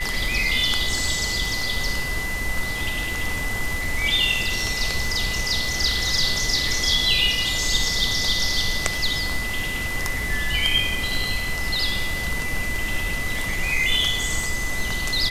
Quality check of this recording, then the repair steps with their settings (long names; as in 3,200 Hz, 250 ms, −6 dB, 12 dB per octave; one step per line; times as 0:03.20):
surface crackle 28 per second −29 dBFS
whistle 2,000 Hz −27 dBFS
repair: click removal
notch filter 2,000 Hz, Q 30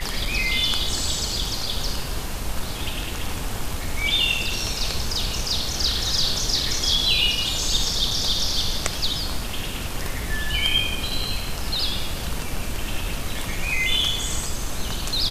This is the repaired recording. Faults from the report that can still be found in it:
none of them is left